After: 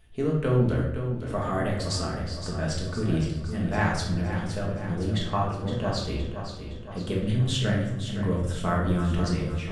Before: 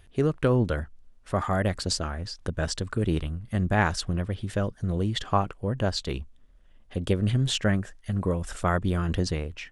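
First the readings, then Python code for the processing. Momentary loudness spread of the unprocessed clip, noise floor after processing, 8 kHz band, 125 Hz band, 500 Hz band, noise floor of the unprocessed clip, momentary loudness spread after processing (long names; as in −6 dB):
9 LU, −37 dBFS, −2.5 dB, +1.0 dB, −0.5 dB, −55 dBFS, 7 LU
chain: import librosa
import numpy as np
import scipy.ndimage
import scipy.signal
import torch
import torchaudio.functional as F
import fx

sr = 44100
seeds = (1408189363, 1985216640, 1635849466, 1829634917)

p1 = x + fx.echo_feedback(x, sr, ms=515, feedback_pct=55, wet_db=-9.5, dry=0)
p2 = fx.room_shoebox(p1, sr, seeds[0], volume_m3=240.0, walls='mixed', distance_m=1.5)
y = p2 * librosa.db_to_amplitude(-6.5)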